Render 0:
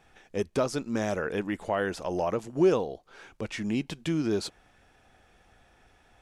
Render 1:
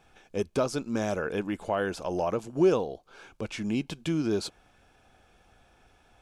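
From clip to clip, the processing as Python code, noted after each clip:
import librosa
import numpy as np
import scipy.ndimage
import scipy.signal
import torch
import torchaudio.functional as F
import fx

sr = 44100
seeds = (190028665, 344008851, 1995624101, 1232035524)

y = fx.notch(x, sr, hz=1900.0, q=6.6)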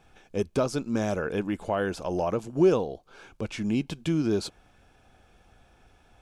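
y = fx.low_shelf(x, sr, hz=280.0, db=4.5)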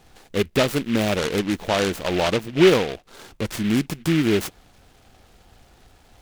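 y = fx.noise_mod_delay(x, sr, seeds[0], noise_hz=2200.0, depth_ms=0.12)
y = y * 10.0 ** (6.0 / 20.0)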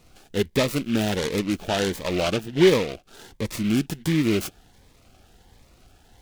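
y = fx.notch_cascade(x, sr, direction='rising', hz=1.4)
y = y * 10.0 ** (-1.0 / 20.0)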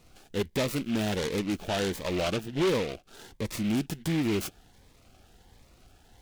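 y = 10.0 ** (-18.5 / 20.0) * np.tanh(x / 10.0 ** (-18.5 / 20.0))
y = y * 10.0 ** (-3.0 / 20.0)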